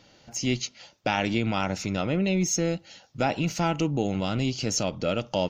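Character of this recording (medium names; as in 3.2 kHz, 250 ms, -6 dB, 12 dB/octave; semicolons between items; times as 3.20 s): noise floor -58 dBFS; spectral tilt -4.5 dB/octave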